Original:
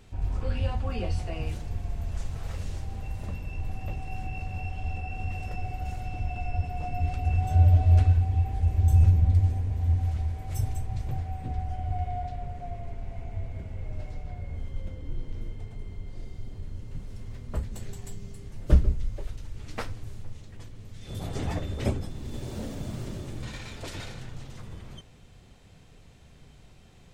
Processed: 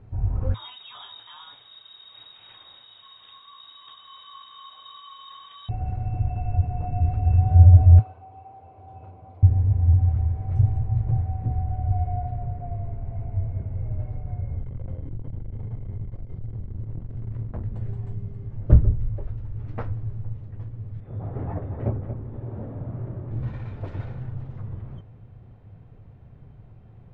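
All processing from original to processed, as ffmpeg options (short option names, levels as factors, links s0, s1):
-filter_complex "[0:a]asettb=1/sr,asplit=3[s0][s1][s2];[s0]atrim=end=0.544[s3];[s1]atrim=start=0.54:end=5.69,asetpts=PTS-STARTPTS,afade=t=in:d=0.004:c=qsin,afade=t=out:st=5.146:d=0.004:c=qsin,equalizer=f=570:w=0.41:g=5,lowpass=f=3200:t=q:w=0.5098,lowpass=f=3200:t=q:w=0.6013,lowpass=f=3200:t=q:w=0.9,lowpass=f=3200:t=q:w=2.563,afreqshift=-3800[s4];[s2]atrim=start=5.686[s5];[s3][s4]acrossfade=d=0.004:c1=hsin:c2=qsin[s6];[s6][s5]acrossfade=d=0.004:c1=qsin:c2=hsin,asettb=1/sr,asplit=3[s7][s8][s9];[s7]atrim=end=7.994[s10];[s8]atrim=start=7.99:end=9.43,asetpts=PTS-STARTPTS,afade=t=in:d=0.004:c=qsin,afade=t=out:st=1.436:d=0.004:c=qsin,highpass=680,lowpass=2900,equalizer=f=1800:w=3.1:g=-15[s11];[s9]atrim=start=9.426[s12];[s10][s11]acrossfade=d=0.004:c1=hsin:c2=qsin[s13];[s13][s12]acrossfade=d=0.004:c1=qsin:c2=hsin,asettb=1/sr,asplit=3[s14][s15][s16];[s14]atrim=end=14.634[s17];[s15]atrim=start=14.63:end=17.67,asetpts=PTS-STARTPTS,afade=t=in:d=0.004:c=qsin,afade=t=out:st=3.036:d=0.004:c=qsin,aeval=exprs='(tanh(89.1*val(0)+0.6)-tanh(0.6))/89.1':c=same,acontrast=35,asplit=2[s18][s19];[s19]adelay=25,volume=0.266[s20];[s18][s20]amix=inputs=2:normalize=0,atrim=end_sample=134064[s21];[s16]atrim=start=17.666[s22];[s17][s21]acrossfade=d=0.004:c1=hsin:c2=qsin[s23];[s23][s22]acrossfade=d=0.004:c1=qsin:c2=hsin,asettb=1/sr,asplit=3[s24][s25][s26];[s24]atrim=end=21.004[s27];[s25]atrim=start=21:end=23.31,asetpts=PTS-STARTPTS,afade=t=in:d=0.004:c=qsin,afade=t=out:st=2.306:d=0.004:c=qsin,lowpass=1800,lowshelf=f=240:g=-8,aecho=1:1:231:0.355,atrim=end_sample=101871[s28];[s26]atrim=start=23.306[s29];[s27][s28]acrossfade=d=0.004:c1=hsin:c2=qsin[s30];[s30][s29]acrossfade=d=0.004:c1=qsin:c2=hsin,lowpass=1200,equalizer=f=110:t=o:w=0.61:g=12,volume=1.19"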